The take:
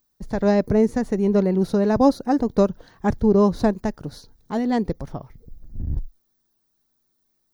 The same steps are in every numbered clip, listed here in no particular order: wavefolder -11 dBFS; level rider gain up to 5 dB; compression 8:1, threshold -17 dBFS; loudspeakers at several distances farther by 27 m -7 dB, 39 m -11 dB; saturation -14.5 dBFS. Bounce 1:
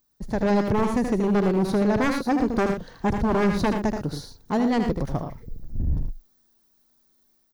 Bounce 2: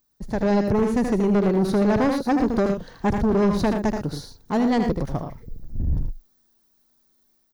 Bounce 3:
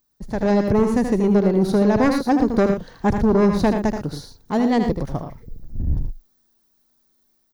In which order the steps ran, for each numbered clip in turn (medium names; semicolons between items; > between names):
level rider > wavefolder > compression > loudspeakers at several distances > saturation; compression > level rider > wavefolder > loudspeakers at several distances > saturation; wavefolder > saturation > loudspeakers at several distances > compression > level rider